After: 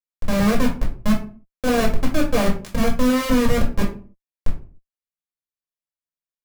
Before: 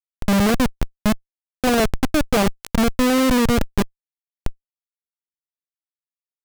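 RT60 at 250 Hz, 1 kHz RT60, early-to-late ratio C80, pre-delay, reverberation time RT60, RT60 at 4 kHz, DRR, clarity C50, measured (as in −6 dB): 0.55 s, 0.35 s, 14.5 dB, 4 ms, 0.40 s, 0.25 s, −4.0 dB, 8.5 dB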